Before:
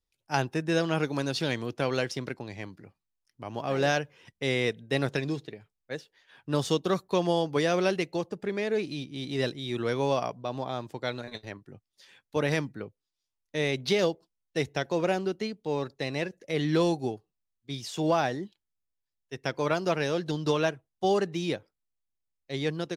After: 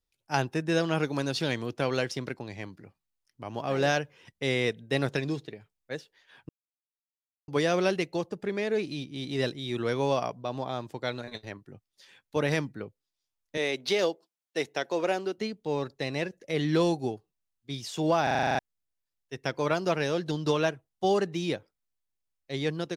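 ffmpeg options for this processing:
-filter_complex "[0:a]asettb=1/sr,asplit=3[a][b][c];[a]atrim=end=13.574[d];[b]atrim=start=13.57:end=15.38,asetpts=PTS-STARTPTS,afade=t=in:d=0.004:c=qsin,afade=t=out:st=1.806:d=0.004:c=qsin,highpass=300[e];[c]atrim=start=15.376[f];[d][e]acrossfade=d=0.004:c1=hsin:c2=qsin[g];[g][f]acrossfade=d=0.004:c1=qsin:c2=hsin,asplit=12[h][i][j][k][l][m][n][o][p][q][r][s];[h]atrim=end=6.49,asetpts=PTS-STARTPTS,afade=t=out:st=6.486:d=0.004:c=hsin[t];[i]atrim=start=6.49:end=7.48,asetpts=PTS-STARTPTS,volume=0[u];[j]atrim=start=7.48:end=18.272,asetpts=PTS-STARTPTS,afade=t=in:d=0.004:c=hsin[v];[k]atrim=start=18.228:end=18.272[w];[l]atrim=start=18.228:end=18.272[x];[m]atrim=start=18.228:end=18.272[y];[n]atrim=start=18.228:end=18.272[z];[o]atrim=start=18.228:end=18.272[aa];[p]atrim=start=18.228:end=18.272[ab];[q]atrim=start=18.228:end=18.272[ac];[r]atrim=start=18.228:end=18.272[ad];[s]atrim=start=18.588[ae];[t][u][v]concat=n=3:v=0:a=1[af];[af][w]acrossfade=d=0.004:c1=hsin:c2=hsin[ag];[ag][x]acrossfade=d=0.004:c1=hsin:c2=hsin[ah];[ah][y]acrossfade=d=0.004:c1=hsin:c2=hsin[ai];[ai][z]acrossfade=d=0.004:c1=hsin:c2=hsin[aj];[aj][aa]acrossfade=d=0.004:c1=hsin:c2=hsin[ak];[ak][ab]acrossfade=d=0.004:c1=hsin:c2=hsin[al];[al][ac]acrossfade=d=0.004:c1=hsin:c2=hsin[am];[am][ad]acrossfade=d=0.004:c1=hsin:c2=hsin[an];[an][ae]acrossfade=d=0.004:c1=hsin:c2=hsin"

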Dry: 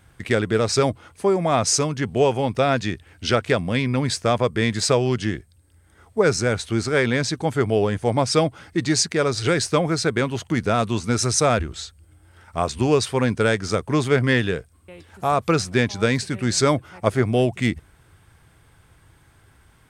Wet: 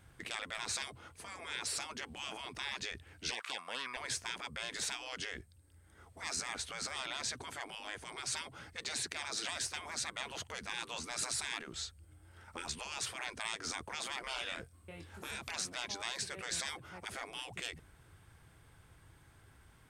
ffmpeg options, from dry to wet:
-filter_complex "[0:a]asettb=1/sr,asplit=3[a][b][c];[a]atrim=end=3.314[d];[b]atrim=start=3.31:end=3.97,asetpts=PTS-STARTPTS,afade=t=in:d=0.004:c=qsin,afade=t=out:st=0.656:d=0.004:c=qsin,highpass=f=1.2k:t=q:w=7.3[e];[c]atrim=start=3.966[f];[d][e]acrossfade=d=0.004:c1=hsin:c2=qsin[g];[g][f]acrossfade=d=0.004:c1=qsin:c2=hsin,asettb=1/sr,asplit=3[h][i][j];[h]atrim=end=14.224[k];[i]atrim=start=14.22:end=15.51,asetpts=PTS-STARTPTS,afade=t=in:d=0.004:c=qsin,afade=t=out:st=1.286:d=0.004:c=qsin,asplit=2[l][m];[m]adelay=24,volume=-3.5dB[n];[l][n]amix=inputs=2:normalize=0,atrim=end_sample=56889[o];[j]atrim=start=15.506[p];[k][o]acrossfade=d=0.004:c1=hsin:c2=qsin[q];[q][p]acrossfade=d=0.004:c1=qsin:c2=hsin,afftfilt=real='re*lt(hypot(re,im),0.112)':imag='im*lt(hypot(re,im),0.112)':win_size=1024:overlap=0.75,volume=-7dB"

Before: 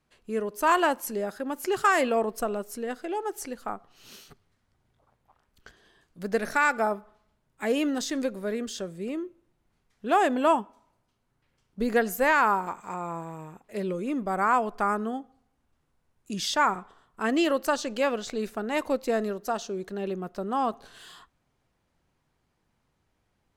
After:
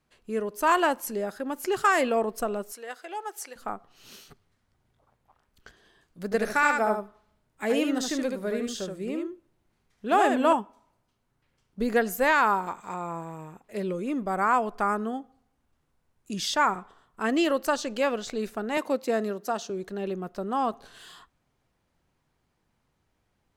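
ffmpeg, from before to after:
-filter_complex "[0:a]asettb=1/sr,asplit=3[a][b][c];[a]atrim=end=2.724[d];[b]atrim=start=2.72:end=3.56,asetpts=PTS-STARTPTS,afade=t=in:d=0.004:c=qsin,afade=t=out:st=0.836:d=0.004:c=qsin,highpass=700[e];[c]atrim=start=3.556[f];[d][e]acrossfade=d=0.004:c1=hsin:c2=qsin[g];[g][f]acrossfade=d=0.004:c1=qsin:c2=hsin,asettb=1/sr,asplit=3[h][i][j];[h]atrim=end=6.244[k];[i]atrim=start=6.24:end=10.53,asetpts=PTS-STARTPTS,afade=t=in:d=0.004:c=qsin,afade=t=out:st=4.286:d=0.004:c=qsin,aecho=1:1:75:0.562,atrim=end_sample=189189[l];[j]atrim=start=10.526[m];[k][l]acrossfade=d=0.004:c1=hsin:c2=qsin[n];[n][m]acrossfade=d=0.004:c1=qsin:c2=hsin,asettb=1/sr,asplit=3[o][p][q];[o]atrim=end=12.234[r];[p]atrim=start=12.23:end=13.04,asetpts=PTS-STARTPTS,afade=t=in:d=0.004:c=qsin,afade=t=out:st=0.806:d=0.004:c=qsin,equalizer=f=3.7k:w=4:g=6.5[s];[q]atrim=start=13.036[t];[r][s]acrossfade=d=0.004:c1=hsin:c2=qsin[u];[u][t]acrossfade=d=0.004:c1=qsin:c2=hsin,asettb=1/sr,asplit=3[v][w][x];[v]atrim=end=18.774[y];[w]atrim=start=18.77:end=19.7,asetpts=PTS-STARTPTS,afade=t=in:d=0.004:c=qsin,afade=t=out:st=0.926:d=0.004:c=qsin,highpass=f=130:w=0.5412,highpass=f=130:w=1.3066[z];[x]atrim=start=19.696[aa];[y][z]acrossfade=d=0.004:c1=hsin:c2=qsin[ab];[ab][aa]acrossfade=d=0.004:c1=qsin:c2=hsin"

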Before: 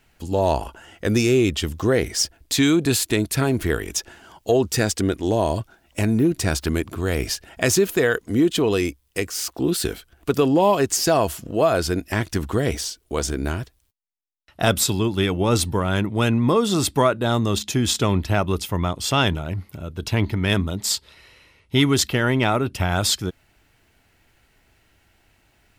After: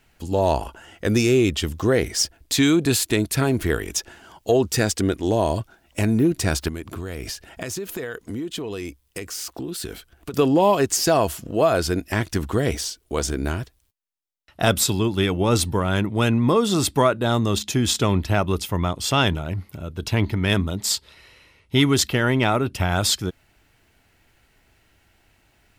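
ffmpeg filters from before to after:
-filter_complex "[0:a]asettb=1/sr,asplit=3[a][b][c];[a]atrim=end=6.684[d];[b]atrim=start=6.68:end=10.34,asetpts=PTS-STARTPTS,afade=t=in:d=0.004:c=qsin,afade=t=out:st=3.656:d=0.004:c=qsin,acompressor=threshold=-27dB:ratio=6:attack=3.2:release=140:knee=1:detection=peak[e];[c]atrim=start=10.336[f];[d][e]acrossfade=d=0.004:c1=hsin:c2=qsin[g];[g][f]acrossfade=d=0.004:c1=qsin:c2=hsin"

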